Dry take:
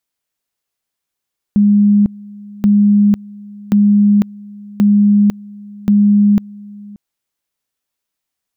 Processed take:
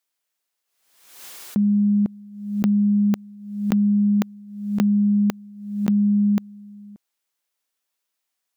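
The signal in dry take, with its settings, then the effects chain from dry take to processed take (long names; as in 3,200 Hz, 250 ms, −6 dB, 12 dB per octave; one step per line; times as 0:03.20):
tone at two levels in turn 205 Hz −6.5 dBFS, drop 23.5 dB, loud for 0.50 s, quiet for 0.58 s, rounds 5
high-pass filter 480 Hz 6 dB per octave
background raised ahead of every attack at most 67 dB per second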